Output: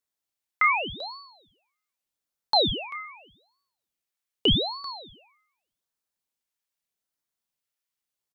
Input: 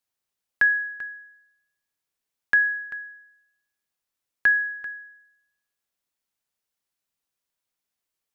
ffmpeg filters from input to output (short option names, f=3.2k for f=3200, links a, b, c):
-filter_complex "[0:a]highpass=820,asplit=2[a][b];[b]adelay=30,volume=-10dB[c];[a][c]amix=inputs=2:normalize=0,aeval=exprs='val(0)*sin(2*PI*1600*n/s+1600*0.75/0.83*sin(2*PI*0.83*n/s))':c=same"